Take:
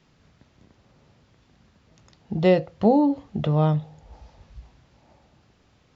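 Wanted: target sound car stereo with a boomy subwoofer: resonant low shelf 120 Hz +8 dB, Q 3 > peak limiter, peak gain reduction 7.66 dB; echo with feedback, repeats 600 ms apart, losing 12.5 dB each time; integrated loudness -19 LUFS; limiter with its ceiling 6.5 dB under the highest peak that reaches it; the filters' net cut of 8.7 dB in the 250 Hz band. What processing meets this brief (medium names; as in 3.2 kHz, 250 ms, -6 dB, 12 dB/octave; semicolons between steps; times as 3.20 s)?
peaking EQ 250 Hz -8.5 dB; peak limiter -16.5 dBFS; resonant low shelf 120 Hz +8 dB, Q 3; feedback delay 600 ms, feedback 24%, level -12.5 dB; trim +16.5 dB; peak limiter -7.5 dBFS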